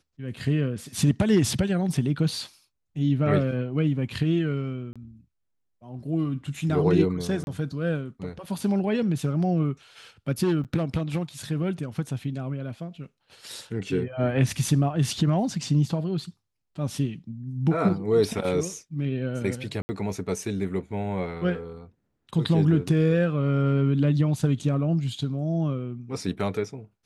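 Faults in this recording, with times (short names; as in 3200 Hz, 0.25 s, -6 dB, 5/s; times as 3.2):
4.93–4.96 gap 26 ms
7.44–7.47 gap 31 ms
10.64–10.65 gap 7.9 ms
19.82–19.89 gap 70 ms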